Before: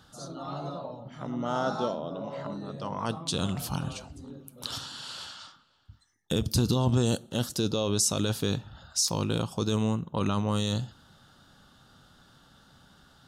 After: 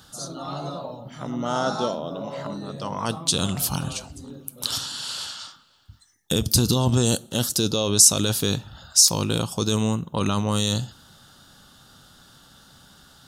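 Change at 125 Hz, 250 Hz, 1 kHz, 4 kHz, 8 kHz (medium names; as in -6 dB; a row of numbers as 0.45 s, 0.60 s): +4.0 dB, +4.0 dB, +4.5 dB, +9.0 dB, +12.5 dB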